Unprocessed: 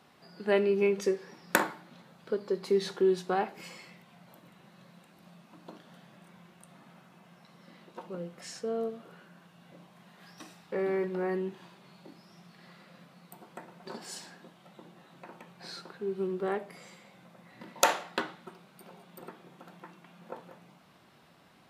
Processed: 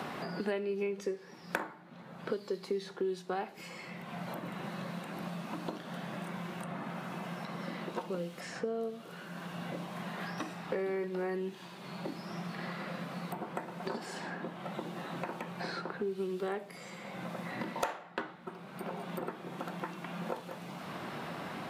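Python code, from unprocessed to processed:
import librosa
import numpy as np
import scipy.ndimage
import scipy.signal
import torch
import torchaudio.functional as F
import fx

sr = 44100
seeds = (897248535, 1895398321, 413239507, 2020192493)

y = fx.band_squash(x, sr, depth_pct=100)
y = y * 10.0 ** (-1.5 / 20.0)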